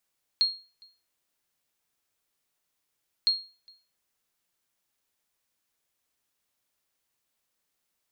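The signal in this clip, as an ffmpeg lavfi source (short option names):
-f lavfi -i "aevalsrc='0.158*(sin(2*PI*4260*mod(t,2.86))*exp(-6.91*mod(t,2.86)/0.34)+0.0335*sin(2*PI*4260*max(mod(t,2.86)-0.41,0))*exp(-6.91*max(mod(t,2.86)-0.41,0)/0.34))':d=5.72:s=44100"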